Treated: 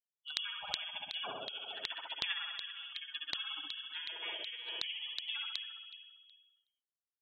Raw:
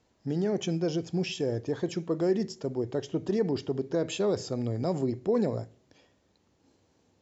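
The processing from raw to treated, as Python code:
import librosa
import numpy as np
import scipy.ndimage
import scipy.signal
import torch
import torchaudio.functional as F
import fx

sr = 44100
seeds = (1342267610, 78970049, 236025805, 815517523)

y = fx.bin_expand(x, sr, power=3.0)
y = fx.low_shelf(y, sr, hz=380.0, db=2.5)
y = fx.freq_invert(y, sr, carrier_hz=3100)
y = fx.room_flutter(y, sr, wall_m=11.3, rt60_s=1.2)
y = fx.filter_lfo_highpass(y, sr, shape='saw_down', hz=2.7, low_hz=410.0, high_hz=2300.0, q=1.9)
y = fx.dynamic_eq(y, sr, hz=2000.0, q=7.1, threshold_db=-52.0, ratio=4.0, max_db=-5)
y = fx.formant_shift(y, sr, semitones=4)
y = fx.spectral_comp(y, sr, ratio=2.0)
y = F.gain(torch.from_numpy(y), -4.0).numpy()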